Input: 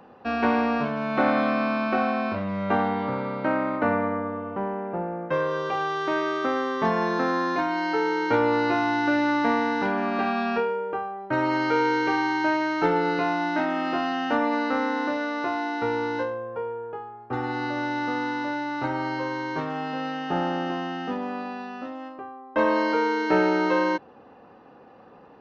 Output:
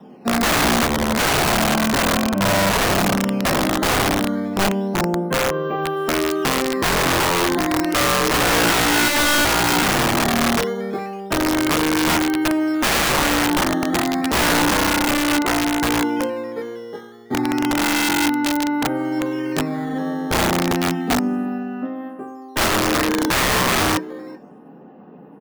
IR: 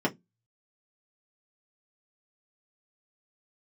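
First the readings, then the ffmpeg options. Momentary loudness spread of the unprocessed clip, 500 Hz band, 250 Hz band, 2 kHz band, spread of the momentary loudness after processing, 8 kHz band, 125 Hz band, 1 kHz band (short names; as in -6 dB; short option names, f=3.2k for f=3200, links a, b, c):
8 LU, +3.5 dB, +6.5 dB, +7.5 dB, 9 LU, n/a, +10.5 dB, +4.0 dB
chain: -filter_complex "[0:a]lowshelf=f=130:g=8.5,flanger=delay=5.2:depth=9.4:regen=87:speed=0.16:shape=triangular,acrossover=split=440[a][b];[b]acrusher=samples=10:mix=1:aa=0.000001:lfo=1:lforange=16:lforate=0.31[c];[a][c]amix=inputs=2:normalize=0,volume=20dB,asoftclip=hard,volume=-20dB,aecho=1:1:383:0.141[d];[1:a]atrim=start_sample=2205,atrim=end_sample=3528[e];[d][e]afir=irnorm=-1:irlink=0,aeval=exprs='(mod(2.66*val(0)+1,2)-1)/2.66':c=same,volume=-4.5dB"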